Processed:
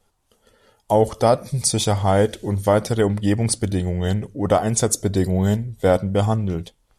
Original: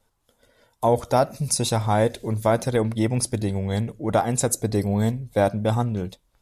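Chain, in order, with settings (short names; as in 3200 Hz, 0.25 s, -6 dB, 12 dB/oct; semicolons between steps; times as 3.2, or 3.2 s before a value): speed mistake 48 kHz file played as 44.1 kHz; gain +3 dB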